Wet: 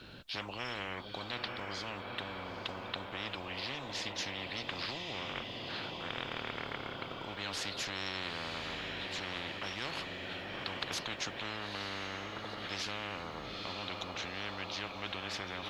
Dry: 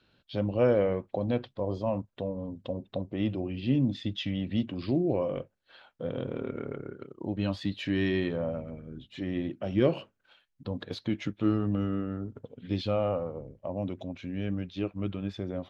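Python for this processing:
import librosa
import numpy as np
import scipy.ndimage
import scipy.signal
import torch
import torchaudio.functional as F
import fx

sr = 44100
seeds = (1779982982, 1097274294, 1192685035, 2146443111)

y = fx.echo_diffused(x, sr, ms=898, feedback_pct=58, wet_db=-14.0)
y = fx.spectral_comp(y, sr, ratio=10.0)
y = y * 10.0 ** (-6.5 / 20.0)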